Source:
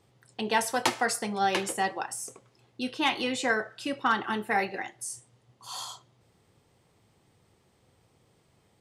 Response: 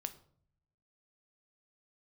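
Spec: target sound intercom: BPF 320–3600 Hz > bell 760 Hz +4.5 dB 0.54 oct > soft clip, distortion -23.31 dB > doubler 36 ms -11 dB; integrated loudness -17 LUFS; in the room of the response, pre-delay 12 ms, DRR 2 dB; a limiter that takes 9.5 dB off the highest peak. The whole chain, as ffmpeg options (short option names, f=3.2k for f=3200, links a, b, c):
-filter_complex "[0:a]alimiter=limit=-20.5dB:level=0:latency=1,asplit=2[a][b];[1:a]atrim=start_sample=2205,adelay=12[c];[b][c]afir=irnorm=-1:irlink=0,volume=0dB[d];[a][d]amix=inputs=2:normalize=0,highpass=320,lowpass=3.6k,equalizer=f=760:t=o:w=0.54:g=4.5,asoftclip=threshold=-17.5dB,asplit=2[e][f];[f]adelay=36,volume=-11dB[g];[e][g]amix=inputs=2:normalize=0,volume=14dB"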